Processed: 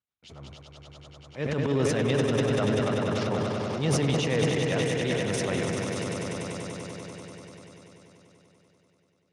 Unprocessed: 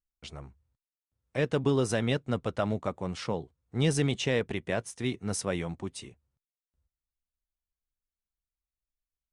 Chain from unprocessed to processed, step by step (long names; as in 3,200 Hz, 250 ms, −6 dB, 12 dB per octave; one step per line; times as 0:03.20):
echo that builds up and dies away 97 ms, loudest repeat 5, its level −8 dB
transient designer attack −10 dB, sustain +10 dB
Speex 36 kbit/s 32,000 Hz